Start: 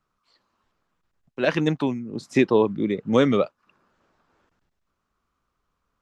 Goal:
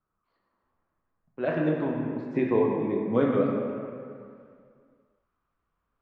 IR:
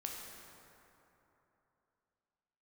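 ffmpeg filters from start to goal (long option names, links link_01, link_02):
-filter_complex "[0:a]asetnsamples=nb_out_samples=441:pad=0,asendcmd='3.44 lowpass f 2700',lowpass=1600[link_01];[1:a]atrim=start_sample=2205,asetrate=61740,aresample=44100[link_02];[link_01][link_02]afir=irnorm=-1:irlink=0"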